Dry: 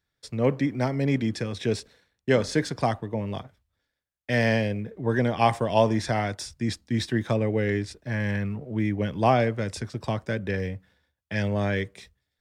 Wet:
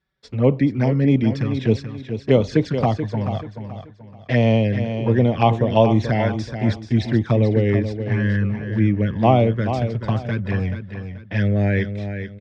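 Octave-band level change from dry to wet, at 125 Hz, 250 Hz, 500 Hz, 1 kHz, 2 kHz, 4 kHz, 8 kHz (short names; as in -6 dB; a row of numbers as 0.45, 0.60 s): +9.5 dB, +7.5 dB, +5.5 dB, +3.5 dB, +1.0 dB, +1.0 dB, n/a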